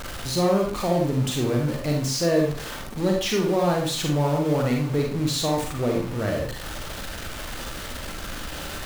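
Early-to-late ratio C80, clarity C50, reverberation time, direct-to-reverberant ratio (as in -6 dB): 8.0 dB, 2.5 dB, 0.45 s, -0.5 dB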